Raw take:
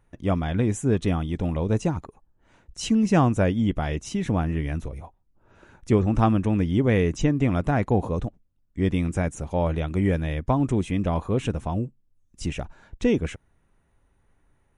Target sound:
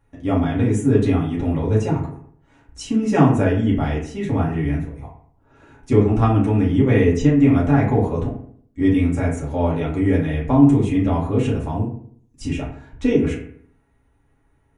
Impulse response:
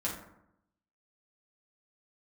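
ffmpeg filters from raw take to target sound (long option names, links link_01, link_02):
-filter_complex "[0:a]asplit=3[link_01][link_02][link_03];[link_01]afade=type=out:start_time=2.82:duration=0.02[link_04];[link_02]agate=range=-7dB:threshold=-27dB:ratio=16:detection=peak,afade=type=in:start_time=2.82:duration=0.02,afade=type=out:start_time=4.97:duration=0.02[link_05];[link_03]afade=type=in:start_time=4.97:duration=0.02[link_06];[link_04][link_05][link_06]amix=inputs=3:normalize=0[link_07];[1:a]atrim=start_sample=2205,asetrate=61740,aresample=44100[link_08];[link_07][link_08]afir=irnorm=-1:irlink=0,volume=1.5dB"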